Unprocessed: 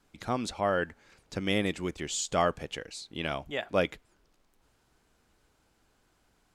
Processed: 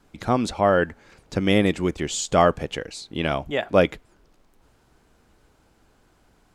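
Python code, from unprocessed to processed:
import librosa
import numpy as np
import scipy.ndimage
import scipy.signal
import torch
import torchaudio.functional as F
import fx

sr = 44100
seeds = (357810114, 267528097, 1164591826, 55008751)

y = fx.tilt_shelf(x, sr, db=3.0, hz=1400.0)
y = F.gain(torch.from_numpy(y), 7.5).numpy()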